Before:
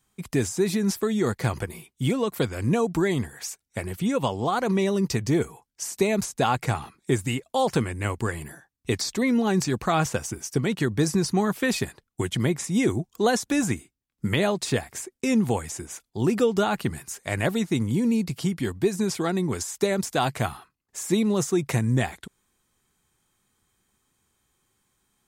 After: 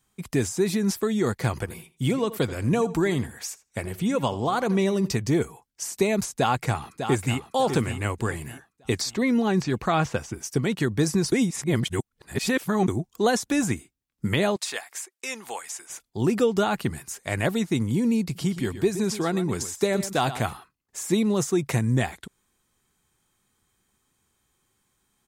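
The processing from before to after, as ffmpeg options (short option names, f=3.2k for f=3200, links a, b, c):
-filter_complex "[0:a]asplit=3[a][b][c];[a]afade=t=out:st=1.64:d=0.02[d];[b]asplit=2[e][f];[f]adelay=83,lowpass=f=4.3k:p=1,volume=-15.5dB,asplit=2[g][h];[h]adelay=83,lowpass=f=4.3k:p=1,volume=0.17[i];[e][g][i]amix=inputs=3:normalize=0,afade=t=in:st=1.64:d=0.02,afade=t=out:st=5.1:d=0.02[j];[c]afade=t=in:st=5.1:d=0.02[k];[d][j][k]amix=inputs=3:normalize=0,asplit=2[l][m];[m]afade=t=in:st=6.31:d=0.01,afade=t=out:st=7.51:d=0.01,aecho=0:1:600|1200|1800|2400:0.398107|0.139338|0.0487681|0.0170688[n];[l][n]amix=inputs=2:normalize=0,asettb=1/sr,asplit=3[o][p][q];[o]atrim=end=9.124[r];[p]atrim=start=9.12:end=10.43,asetpts=PTS-STARTPTS,afade=t=in:d=0.004:c=qsin,afade=t=out:st=1.306:d=0.004:c=qsin,acrossover=split=4900[s][t];[t]acompressor=threshold=-49dB:ratio=4:attack=1:release=60[u];[s][u]amix=inputs=2:normalize=0[v];[q]atrim=start=10.426[w];[r][v]acrossfade=d=0.004:c1=hsin:c2=qsin[x];[x][w]acrossfade=d=0.004:c1=qsin:c2=hsin,asettb=1/sr,asplit=3[y][z][aa];[y]atrim=end=14.564[ab];[z]atrim=start=14.56:end=15.9,asetpts=PTS-STARTPTS,afade=t=in:d=0.004:c=qsin,afade=t=out:st=1.336:d=0.004:c=qsin,highpass=890[ac];[aa]atrim=start=15.896[ad];[ab][ac]acrossfade=d=0.004:c1=hsin:c2=qsin[ae];[ae][ad]acrossfade=d=0.004:c1=qsin:c2=hsin,asettb=1/sr,asplit=3[af][ag][ah];[af]atrim=end=18.234[ai];[ag]atrim=start=18.23:end=20.53,asetpts=PTS-STARTPTS,afade=t=in:d=0.004:c=qsin,afade=t=out:st=2.296:d=0.004:c=qsin,aecho=1:1:121:0.237,atrim=end_sample=101430[aj];[ah]atrim=start=20.526[ak];[ai][aj]acrossfade=d=0.004:c1=hsin:c2=qsin[al];[al][ak]acrossfade=d=0.004:c1=qsin:c2=hsin,asplit=3[am][an][ao];[am]atrim=end=11.322[ap];[an]atrim=start=11.318:end=12.882,asetpts=PTS-STARTPTS,areverse[aq];[ao]atrim=start=12.878[ar];[ap][aq]acrossfade=d=0.004:c1=hsin:c2=hsin[as];[as][ar]acrossfade=d=0.004:c1=hsin:c2=hsin"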